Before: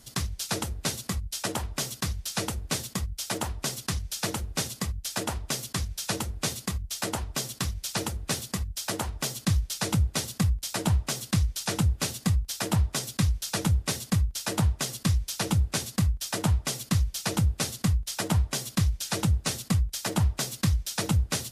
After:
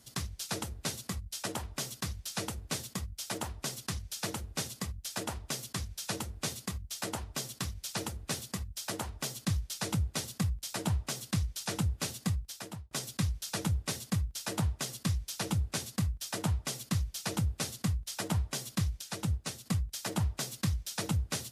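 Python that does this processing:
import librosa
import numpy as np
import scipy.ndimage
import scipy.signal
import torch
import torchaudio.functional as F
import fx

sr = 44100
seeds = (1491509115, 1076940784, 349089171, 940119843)

y = fx.upward_expand(x, sr, threshold_db=-31.0, expansion=1.5, at=(19.01, 19.66))
y = fx.edit(y, sr, fx.fade_out_span(start_s=12.28, length_s=0.63), tone=tone)
y = scipy.signal.sosfilt(scipy.signal.butter(2, 57.0, 'highpass', fs=sr, output='sos'), y)
y = F.gain(torch.from_numpy(y), -6.0).numpy()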